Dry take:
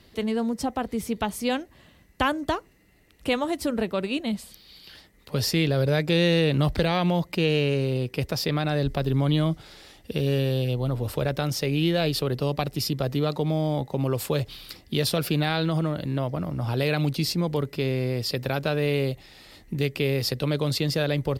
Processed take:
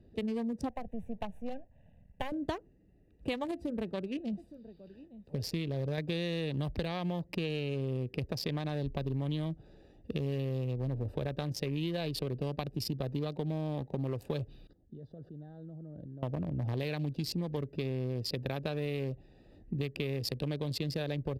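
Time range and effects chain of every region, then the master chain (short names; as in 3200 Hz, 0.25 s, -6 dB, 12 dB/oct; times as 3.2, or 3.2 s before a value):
0.69–2.32 half-wave gain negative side -12 dB + fixed phaser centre 1300 Hz, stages 6 + three-band squash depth 40%
3.51–5.98 resonator 170 Hz, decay 0.31 s, mix 40% + echo 0.865 s -16.5 dB
14.67–16.23 level quantiser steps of 21 dB + Butterworth band-stop 2400 Hz, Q 2 + tape spacing loss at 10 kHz 20 dB
whole clip: Wiener smoothing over 41 samples; notch 1400 Hz, Q 6.3; compressor, threshold -29 dBFS; gain -2 dB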